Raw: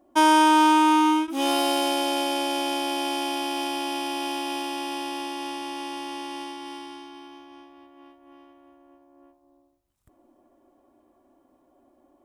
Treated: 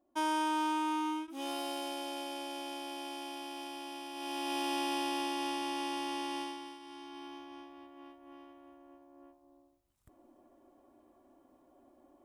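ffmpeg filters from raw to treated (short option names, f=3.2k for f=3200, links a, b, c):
-af "volume=8.5dB,afade=t=in:st=4.13:d=0.6:silence=0.251189,afade=t=out:st=6.38:d=0.41:silence=0.298538,afade=t=in:st=6.79:d=0.49:silence=0.266073"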